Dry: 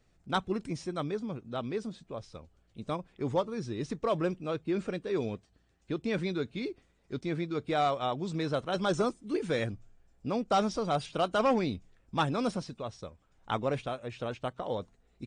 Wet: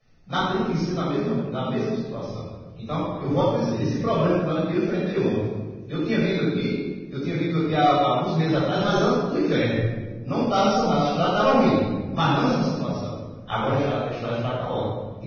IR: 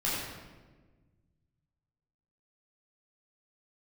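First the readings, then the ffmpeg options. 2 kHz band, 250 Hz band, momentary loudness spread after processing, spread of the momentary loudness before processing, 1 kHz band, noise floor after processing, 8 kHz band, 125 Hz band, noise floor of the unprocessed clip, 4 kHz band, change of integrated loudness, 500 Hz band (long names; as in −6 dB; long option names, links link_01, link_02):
+9.0 dB, +11.0 dB, 10 LU, 14 LU, +9.0 dB, −39 dBFS, can't be measured, +12.5 dB, −69 dBFS, +9.0 dB, +9.5 dB, +8.5 dB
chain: -filter_complex "[1:a]atrim=start_sample=2205[link_01];[0:a][link_01]afir=irnorm=-1:irlink=0" -ar 16000 -c:a libvorbis -b:a 16k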